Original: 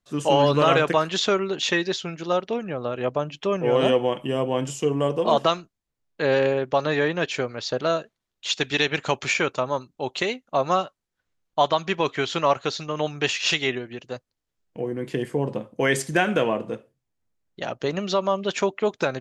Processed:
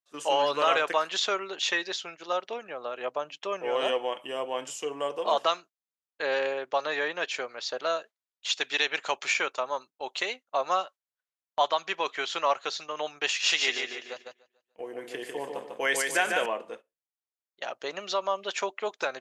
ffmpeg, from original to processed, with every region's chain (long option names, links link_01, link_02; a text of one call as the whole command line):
ffmpeg -i in.wav -filter_complex "[0:a]asettb=1/sr,asplit=3[link_01][link_02][link_03];[link_01]atrim=end=13.284[link_04];[link_02]atrim=start=13.28:end=16.46,asetpts=PTS-STARTPTS,afade=type=in:duration=0.004:curve=qsin,afade=type=out:start_time=3.176:duration=0.004:curve=qsin,highshelf=frequency=8800:gain=6,aecho=1:1:147|294|441|588|735:0.596|0.238|0.0953|0.0381|0.0152,atrim=end_sample=140238[link_05];[link_03]atrim=start=16.456[link_06];[link_04][link_05]acrossfade=duration=0.004:curve1=hsin:curve2=qsin[link_07];[link_07][link_06]acrossfade=duration=0.004:curve1=qsin:curve2=hsin,highpass=620,agate=range=-11dB:threshold=-41dB:ratio=16:detection=peak,volume=-3dB" out.wav